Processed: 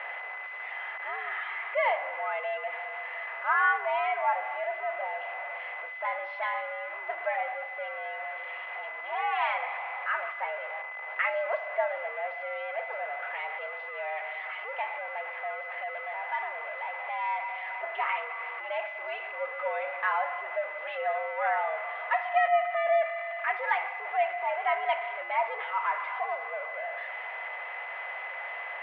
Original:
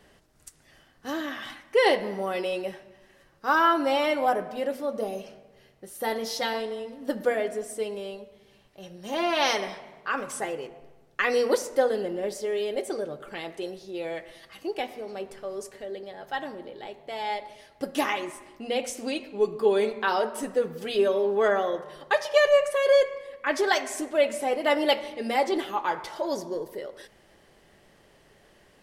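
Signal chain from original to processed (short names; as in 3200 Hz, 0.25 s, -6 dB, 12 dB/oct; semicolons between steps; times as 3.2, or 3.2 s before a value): zero-crossing step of -26 dBFS; whine 1900 Hz -33 dBFS; mistuned SSB +120 Hz 540–2400 Hz; gain -4.5 dB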